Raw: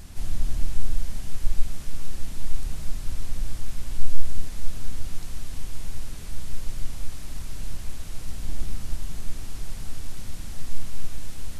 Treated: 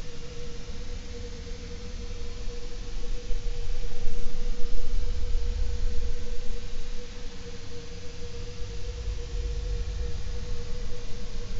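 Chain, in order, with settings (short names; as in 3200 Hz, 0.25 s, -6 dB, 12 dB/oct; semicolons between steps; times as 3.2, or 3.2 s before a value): inharmonic rescaling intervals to 84%; whine 480 Hz -45 dBFS; Paulstretch 22×, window 0.10 s, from 2.24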